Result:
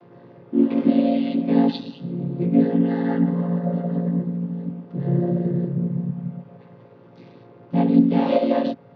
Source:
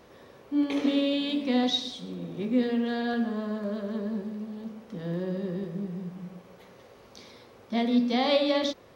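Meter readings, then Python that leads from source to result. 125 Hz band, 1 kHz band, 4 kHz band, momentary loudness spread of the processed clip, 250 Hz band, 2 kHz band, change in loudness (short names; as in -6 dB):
+15.5 dB, +4.0 dB, n/a, 11 LU, +8.0 dB, -3.0 dB, +7.0 dB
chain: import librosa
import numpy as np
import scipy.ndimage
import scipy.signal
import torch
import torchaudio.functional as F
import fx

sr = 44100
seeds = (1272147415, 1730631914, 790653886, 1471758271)

y = fx.chord_vocoder(x, sr, chord='minor triad', root=46)
y = scipy.signal.sosfilt(scipy.signal.butter(4, 4900.0, 'lowpass', fs=sr, output='sos'), y)
y = fx.high_shelf(y, sr, hz=3600.0, db=-7.5)
y = F.gain(torch.from_numpy(y), 8.5).numpy()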